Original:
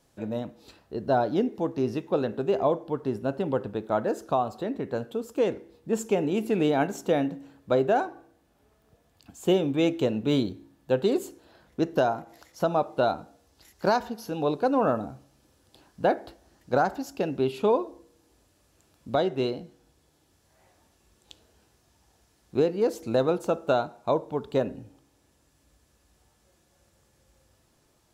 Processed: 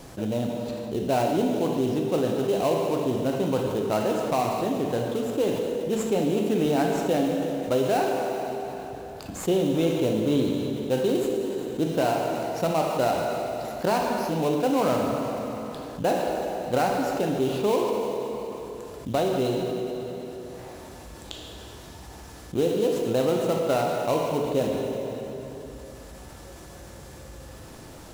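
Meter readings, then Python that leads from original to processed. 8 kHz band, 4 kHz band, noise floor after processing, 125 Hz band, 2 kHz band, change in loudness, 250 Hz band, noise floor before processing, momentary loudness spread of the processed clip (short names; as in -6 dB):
+8.0 dB, +4.5 dB, -43 dBFS, +3.5 dB, +1.5 dB, +1.5 dB, +3.0 dB, -66 dBFS, 19 LU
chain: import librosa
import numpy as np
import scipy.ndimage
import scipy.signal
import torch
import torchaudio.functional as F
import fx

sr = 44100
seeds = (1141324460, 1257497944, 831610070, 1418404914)

p1 = fx.sample_hold(x, sr, seeds[0], rate_hz=3400.0, jitter_pct=20)
p2 = x + F.gain(torch.from_numpy(p1), -3.5).numpy()
p3 = fx.rev_plate(p2, sr, seeds[1], rt60_s=2.1, hf_ratio=0.9, predelay_ms=0, drr_db=2.5)
p4 = fx.env_flatten(p3, sr, amount_pct=50)
y = F.gain(torch.from_numpy(p4), -7.0).numpy()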